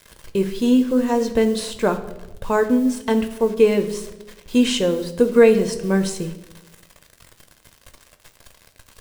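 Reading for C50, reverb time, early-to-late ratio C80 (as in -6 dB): 12.5 dB, 1.0 s, 14.5 dB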